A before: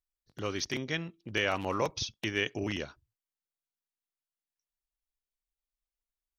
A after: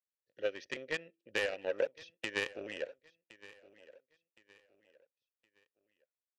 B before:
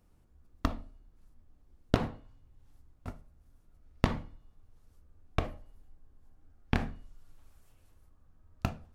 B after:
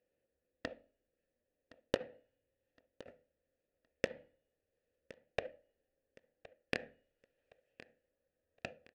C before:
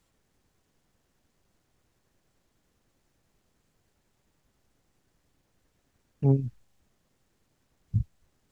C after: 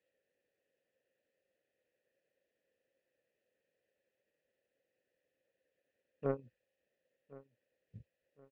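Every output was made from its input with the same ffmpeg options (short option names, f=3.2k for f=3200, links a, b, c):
-filter_complex "[0:a]asplit=3[a][b][c];[a]bandpass=f=530:t=q:w=8,volume=0dB[d];[b]bandpass=f=1.84k:t=q:w=8,volume=-6dB[e];[c]bandpass=f=2.48k:t=q:w=8,volume=-9dB[f];[d][e][f]amix=inputs=3:normalize=0,aeval=exprs='0.075*(cos(1*acos(clip(val(0)/0.075,-1,1)))-cos(1*PI/2))+0.00841*(cos(5*acos(clip(val(0)/0.075,-1,1)))-cos(5*PI/2))+0.0133*(cos(7*acos(clip(val(0)/0.075,-1,1)))-cos(7*PI/2))':c=same,acompressor=threshold=-41dB:ratio=6,aecho=1:1:1066|2132|3198:0.106|0.0371|0.013,volume=12dB"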